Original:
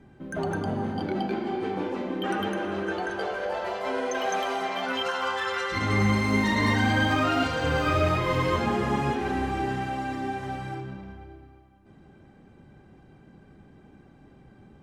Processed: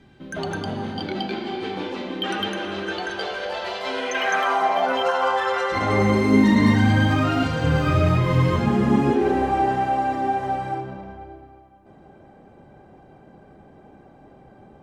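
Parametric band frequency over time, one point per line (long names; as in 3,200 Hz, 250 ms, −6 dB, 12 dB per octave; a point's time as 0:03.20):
parametric band +12.5 dB 1.5 octaves
0:03.93 3,800 Hz
0:04.80 670 Hz
0:05.88 670 Hz
0:06.86 140 Hz
0:08.65 140 Hz
0:09.54 660 Hz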